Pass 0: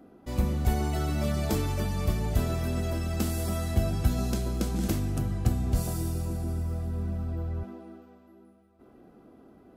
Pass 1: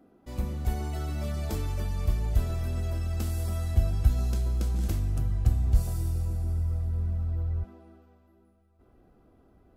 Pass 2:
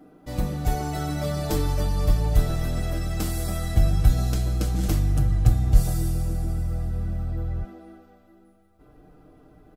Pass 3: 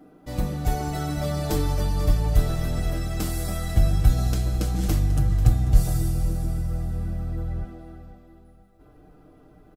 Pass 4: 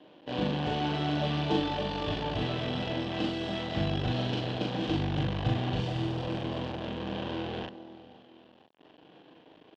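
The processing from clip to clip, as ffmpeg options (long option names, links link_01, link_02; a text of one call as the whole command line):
ffmpeg -i in.wav -af "asubboost=boost=5.5:cutoff=90,volume=-6dB" out.wav
ffmpeg -i in.wav -af "aecho=1:1:6.6:0.69,volume=7dB" out.wav
ffmpeg -i in.wav -af "aecho=1:1:491|982|1473:0.178|0.0569|0.0182" out.wav
ffmpeg -i in.wav -filter_complex "[0:a]acrusher=bits=6:dc=4:mix=0:aa=0.000001,highpass=220,equalizer=frequency=1300:width_type=q:width=4:gain=-10,equalizer=frequency=2100:width_type=q:width=4:gain=-9,equalizer=frequency=3100:width_type=q:width=4:gain=7,lowpass=frequency=3500:width=0.5412,lowpass=frequency=3500:width=1.3066,asplit=2[link_01][link_02];[link_02]adelay=40,volume=-2dB[link_03];[link_01][link_03]amix=inputs=2:normalize=0" out.wav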